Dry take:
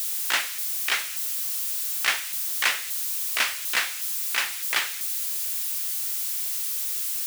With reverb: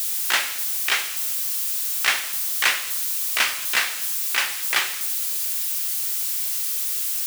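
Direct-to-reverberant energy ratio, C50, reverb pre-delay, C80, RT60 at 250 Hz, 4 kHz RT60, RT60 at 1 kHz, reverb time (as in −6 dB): 9.0 dB, 13.0 dB, 3 ms, 15.0 dB, 2.3 s, 1.0 s, 1.2 s, 1.4 s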